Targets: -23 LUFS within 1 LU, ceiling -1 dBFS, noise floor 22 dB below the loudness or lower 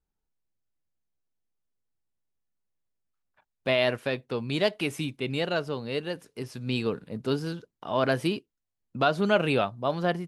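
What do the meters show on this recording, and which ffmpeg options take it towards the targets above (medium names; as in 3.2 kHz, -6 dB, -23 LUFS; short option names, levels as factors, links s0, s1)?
loudness -28.5 LUFS; peak level -10.0 dBFS; loudness target -23.0 LUFS
-> -af "volume=1.88"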